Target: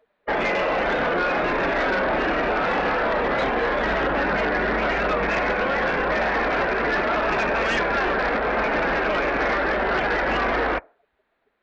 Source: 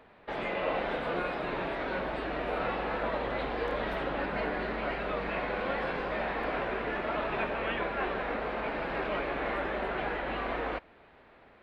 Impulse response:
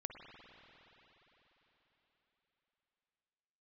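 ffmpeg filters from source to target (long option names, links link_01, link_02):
-filter_complex "[0:a]asettb=1/sr,asplit=3[link_01][link_02][link_03];[link_01]atrim=end=1.154[link_04];[link_02]atrim=start=1.15:end=3.79,asetpts=PTS-STARTPTS,afade=type=in:duration=0.004:curve=qsin,afade=type=out:start_time=2.636:duration=0.004:curve=qsin,asplit=2[link_05][link_06];[link_06]adelay=30,volume=-5dB[link_07];[link_05][link_07]amix=inputs=2:normalize=0,atrim=end_sample=116424[link_08];[link_03]atrim=start=3.786[link_09];[link_04][link_08]acrossfade=duration=0.004:curve1=hsin:curve2=qsin[link_10];[link_10][link_09]acrossfade=duration=0.004:curve1=qsin:curve2=hsin,afftdn=noise_reduction=32:noise_floor=-42,acontrast=34,alimiter=limit=-23dB:level=0:latency=1:release=68,equalizer=frequency=100:width_type=o:width=0.67:gain=-10,equalizer=frequency=1600:width_type=o:width=0.67:gain=4,equalizer=frequency=4000:width_type=o:width=0.67:gain=6,aeval=exprs='0.1*sin(PI/2*1.58*val(0)/0.1)':channel_layout=same,volume=2.5dB"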